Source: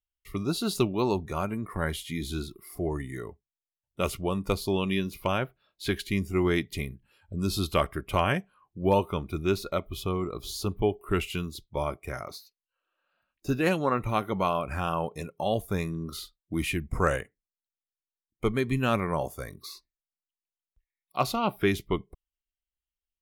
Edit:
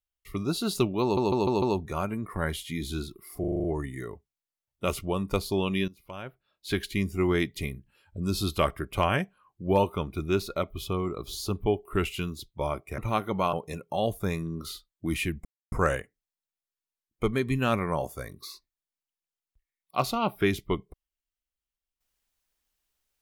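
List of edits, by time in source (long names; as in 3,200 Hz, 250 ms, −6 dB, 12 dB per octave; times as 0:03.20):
0:01.02: stutter 0.15 s, 5 plays
0:02.80: stutter 0.04 s, 7 plays
0:05.04–0:05.89: fade in quadratic, from −17.5 dB
0:12.14–0:13.99: remove
0:14.54–0:15.01: remove
0:16.93: splice in silence 0.27 s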